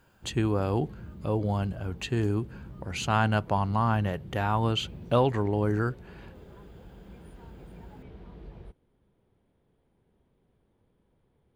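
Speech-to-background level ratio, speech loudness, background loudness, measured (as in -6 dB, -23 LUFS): 18.0 dB, -28.5 LUFS, -46.5 LUFS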